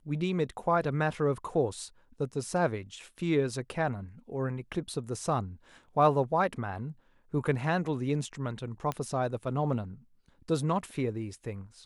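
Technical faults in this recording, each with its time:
8.92 pop -19 dBFS

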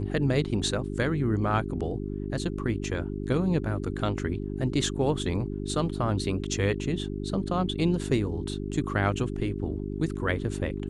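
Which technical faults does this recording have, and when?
hum 50 Hz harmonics 8 -33 dBFS

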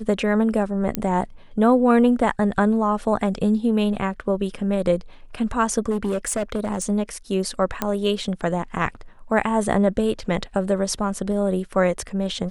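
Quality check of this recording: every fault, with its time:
0.95 pop -7 dBFS
5.9–6.9 clipped -19 dBFS
7.82 pop -8 dBFS

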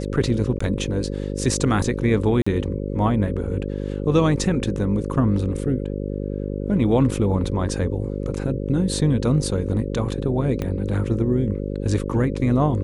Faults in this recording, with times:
buzz 50 Hz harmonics 11 -27 dBFS
0.59–0.6 gap 14 ms
2.42–2.46 gap 45 ms
10.62 pop -14 dBFS

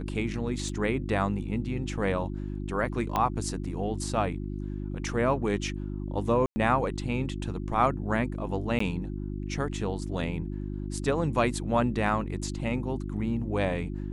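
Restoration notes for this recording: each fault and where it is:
hum 50 Hz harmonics 7 -34 dBFS
0.69 gap 2.9 ms
3.16 pop -13 dBFS
6.46–6.56 gap 0.1 s
8.79–8.8 gap 14 ms

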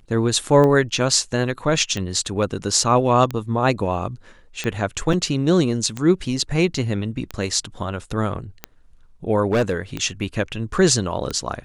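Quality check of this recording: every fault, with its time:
tick 45 rpm -12 dBFS
5.13 gap 3.7 ms
9.51–9.8 clipped -14.5 dBFS

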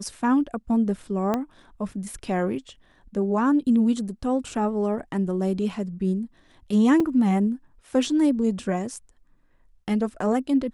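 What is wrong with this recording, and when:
1.34 pop -12 dBFS
7 gap 3.4 ms

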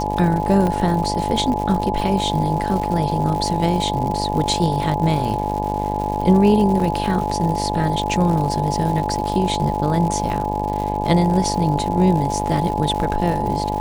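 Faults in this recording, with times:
buzz 50 Hz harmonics 20 -25 dBFS
crackle 170/s -26 dBFS
tone 850 Hz -24 dBFS
0.67 gap 2 ms
6.8 gap 4.5 ms

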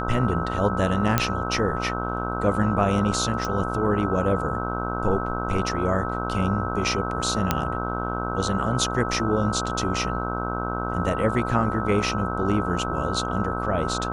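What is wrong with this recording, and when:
buzz 60 Hz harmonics 26 -29 dBFS
tone 1300 Hz -30 dBFS
1.18 pop -4 dBFS
3.45 pop
7.51 pop -5 dBFS

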